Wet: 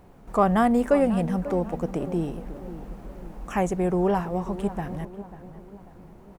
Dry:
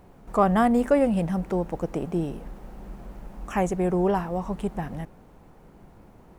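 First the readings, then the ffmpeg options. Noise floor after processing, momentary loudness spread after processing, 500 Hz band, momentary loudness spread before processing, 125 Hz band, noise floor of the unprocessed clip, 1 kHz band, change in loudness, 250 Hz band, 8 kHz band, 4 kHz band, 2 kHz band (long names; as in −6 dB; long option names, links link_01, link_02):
−49 dBFS, 21 LU, +0.5 dB, 22 LU, +0.5 dB, −52 dBFS, 0.0 dB, 0.0 dB, +0.5 dB, 0.0 dB, 0.0 dB, 0.0 dB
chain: -filter_complex "[0:a]asplit=2[link_01][link_02];[link_02]adelay=543,lowpass=frequency=1600:poles=1,volume=-13.5dB,asplit=2[link_03][link_04];[link_04]adelay=543,lowpass=frequency=1600:poles=1,volume=0.48,asplit=2[link_05][link_06];[link_06]adelay=543,lowpass=frequency=1600:poles=1,volume=0.48,asplit=2[link_07][link_08];[link_08]adelay=543,lowpass=frequency=1600:poles=1,volume=0.48,asplit=2[link_09][link_10];[link_10]adelay=543,lowpass=frequency=1600:poles=1,volume=0.48[link_11];[link_01][link_03][link_05][link_07][link_09][link_11]amix=inputs=6:normalize=0"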